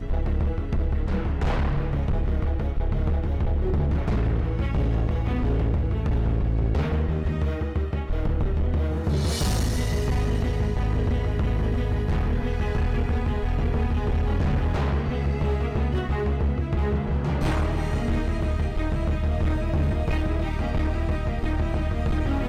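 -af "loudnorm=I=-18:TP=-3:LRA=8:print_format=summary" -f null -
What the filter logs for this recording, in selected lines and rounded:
Input Integrated:    -25.8 LUFS
Input True Peak:     -18.5 dBTP
Input LRA:             1.0 LU
Input Threshold:     -35.8 LUFS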